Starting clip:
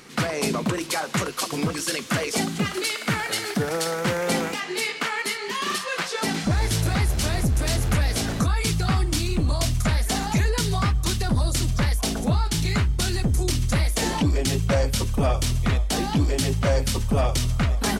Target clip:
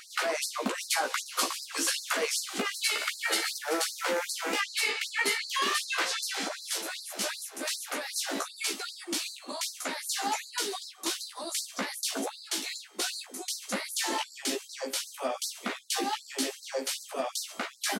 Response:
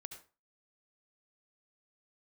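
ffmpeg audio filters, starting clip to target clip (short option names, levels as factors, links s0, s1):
-filter_complex "[0:a]acompressor=threshold=0.0562:ratio=6,asplit=2[s0][s1];[s1]adelay=15,volume=0.708[s2];[s0][s2]amix=inputs=2:normalize=0,afftfilt=real='re*gte(b*sr/1024,210*pow(4000/210,0.5+0.5*sin(2*PI*2.6*pts/sr)))':imag='im*gte(b*sr/1024,210*pow(4000/210,0.5+0.5*sin(2*PI*2.6*pts/sr)))':win_size=1024:overlap=0.75"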